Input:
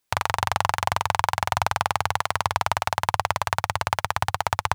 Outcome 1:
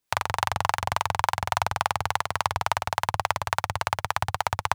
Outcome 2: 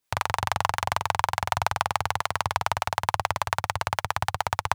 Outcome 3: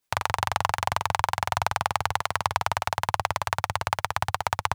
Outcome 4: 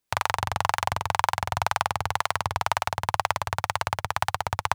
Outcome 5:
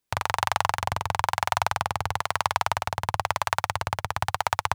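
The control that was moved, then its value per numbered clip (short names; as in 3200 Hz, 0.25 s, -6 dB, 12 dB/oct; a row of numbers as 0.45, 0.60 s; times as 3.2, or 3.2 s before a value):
harmonic tremolo, rate: 3.5, 6.9, 10, 2, 1 Hz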